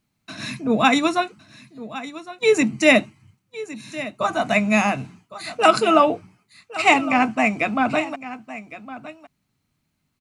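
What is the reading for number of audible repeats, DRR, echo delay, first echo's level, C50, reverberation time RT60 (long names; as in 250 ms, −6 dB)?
1, no reverb audible, 1,110 ms, −15.5 dB, no reverb audible, no reverb audible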